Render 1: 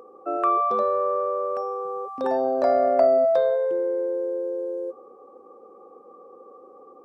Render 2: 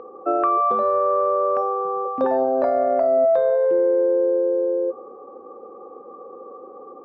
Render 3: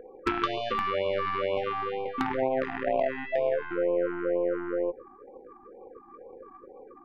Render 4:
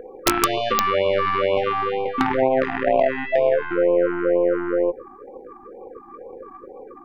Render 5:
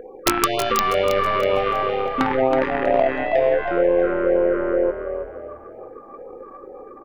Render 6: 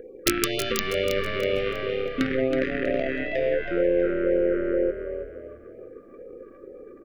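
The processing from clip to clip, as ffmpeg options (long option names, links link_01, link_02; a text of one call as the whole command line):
ffmpeg -i in.wav -af "lowpass=2100,bandreject=frequency=99.16:width_type=h:width=4,bandreject=frequency=198.32:width_type=h:width=4,bandreject=frequency=297.48:width_type=h:width=4,bandreject=frequency=396.64:width_type=h:width=4,bandreject=frequency=495.8:width_type=h:width=4,bandreject=frequency=594.96:width_type=h:width=4,bandreject=frequency=694.12:width_type=h:width=4,bandreject=frequency=793.28:width_type=h:width=4,bandreject=frequency=892.44:width_type=h:width=4,bandreject=frequency=991.6:width_type=h:width=4,bandreject=frequency=1090.76:width_type=h:width=4,alimiter=limit=-19dB:level=0:latency=1:release=492,volume=8dB" out.wav
ffmpeg -i in.wav -af "acompressor=threshold=-21dB:ratio=4,aeval=exprs='0.188*(cos(1*acos(clip(val(0)/0.188,-1,1)))-cos(1*PI/2))+0.0531*(cos(3*acos(clip(val(0)/0.188,-1,1)))-cos(3*PI/2))+0.00668*(cos(5*acos(clip(val(0)/0.188,-1,1)))-cos(5*PI/2))+0.00422*(cos(6*acos(clip(val(0)/0.188,-1,1)))-cos(6*PI/2))':channel_layout=same,afftfilt=real='re*(1-between(b*sr/1024,490*pow(1600/490,0.5+0.5*sin(2*PI*2.1*pts/sr))/1.41,490*pow(1600/490,0.5+0.5*sin(2*PI*2.1*pts/sr))*1.41))':imag='im*(1-between(b*sr/1024,490*pow(1600/490,0.5+0.5*sin(2*PI*2.1*pts/sr))/1.41,490*pow(1600/490,0.5+0.5*sin(2*PI*2.1*pts/sr))*1.41))':win_size=1024:overlap=0.75,volume=3dB" out.wav
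ffmpeg -i in.wav -af "aeval=exprs='(mod(4.47*val(0)+1,2)-1)/4.47':channel_layout=same,volume=8.5dB" out.wav
ffmpeg -i in.wav -filter_complex "[0:a]asplit=5[link_01][link_02][link_03][link_04][link_05];[link_02]adelay=322,afreqshift=36,volume=-8dB[link_06];[link_03]adelay=644,afreqshift=72,volume=-16.9dB[link_07];[link_04]adelay=966,afreqshift=108,volume=-25.7dB[link_08];[link_05]adelay=1288,afreqshift=144,volume=-34.6dB[link_09];[link_01][link_06][link_07][link_08][link_09]amix=inputs=5:normalize=0" out.wav
ffmpeg -i in.wav -af "asuperstop=centerf=910:order=4:qfactor=0.82,volume=-1.5dB" out.wav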